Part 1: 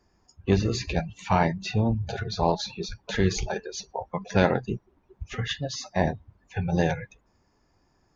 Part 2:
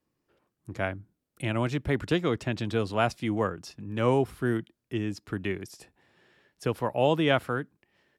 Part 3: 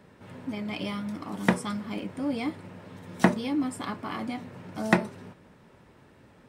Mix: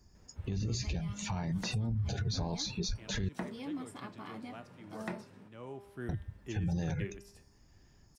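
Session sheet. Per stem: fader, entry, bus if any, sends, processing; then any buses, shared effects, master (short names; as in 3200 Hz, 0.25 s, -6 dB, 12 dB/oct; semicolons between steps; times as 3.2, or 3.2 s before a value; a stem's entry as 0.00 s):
-5.5 dB, 0.00 s, muted 3.29–6.09, bus A, no send, tone controls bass +13 dB, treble +13 dB
5.52 s -14 dB -> 5.92 s -5.5 dB, 1.55 s, no bus, no send, resonator 200 Hz, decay 0.76 s, harmonics all, mix 70%; vocal rider 0.5 s
-12.0 dB, 0.15 s, bus A, no send, dry
bus A: 0.0 dB, compressor, threshold -25 dBFS, peak gain reduction 12 dB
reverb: off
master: limiter -26.5 dBFS, peak gain reduction 11 dB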